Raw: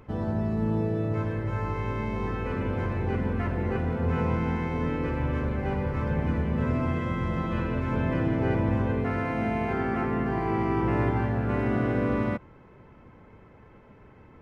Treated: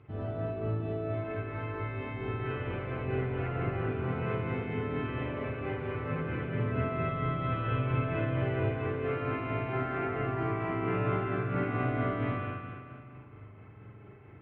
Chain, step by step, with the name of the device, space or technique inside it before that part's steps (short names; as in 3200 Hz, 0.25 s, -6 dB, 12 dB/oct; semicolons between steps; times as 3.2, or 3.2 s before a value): combo amplifier with spring reverb and tremolo (spring tank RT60 2 s, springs 39/44 ms, chirp 55 ms, DRR -7 dB; tremolo 4.4 Hz, depth 30%; speaker cabinet 86–3500 Hz, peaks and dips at 110 Hz +9 dB, 210 Hz -8 dB, 530 Hz -9 dB, 950 Hz -8 dB, 1700 Hz -4 dB); gain -5 dB